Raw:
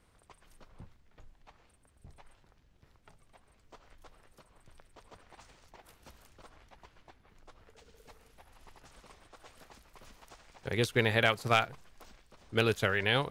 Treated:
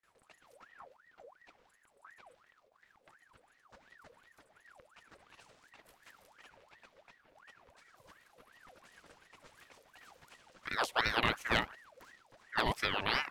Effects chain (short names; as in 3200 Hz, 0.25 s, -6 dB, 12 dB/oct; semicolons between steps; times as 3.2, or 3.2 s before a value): gate with hold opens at -56 dBFS; ring modulator with a swept carrier 1200 Hz, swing 60%, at 2.8 Hz; gain -1.5 dB